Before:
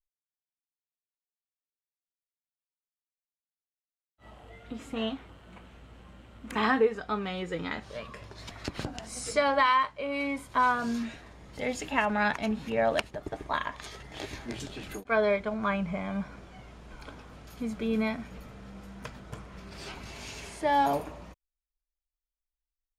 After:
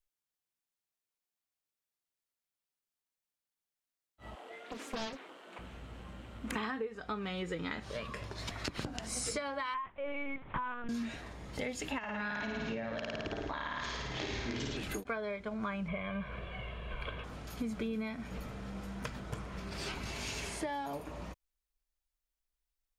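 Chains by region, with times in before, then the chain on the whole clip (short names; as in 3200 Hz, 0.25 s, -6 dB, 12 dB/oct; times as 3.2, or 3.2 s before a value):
4.35–5.59 HPF 300 Hz 24 dB/oct + Doppler distortion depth 0.95 ms
9.74–10.89 block floating point 3-bit + LPF 2800 Hz 24 dB/oct + LPC vocoder at 8 kHz pitch kept
11.98–14.77 steep low-pass 6500 Hz + flutter echo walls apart 9.2 m, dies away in 1.1 s + compressor 5:1, threshold -29 dBFS
15.88–17.24 resonant high shelf 4100 Hz -11.5 dB, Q 3 + comb 1.8 ms, depth 63%
whole clip: compressor 12:1, threshold -36 dBFS; dynamic EQ 740 Hz, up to -4 dB, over -50 dBFS, Q 1.6; gain +3 dB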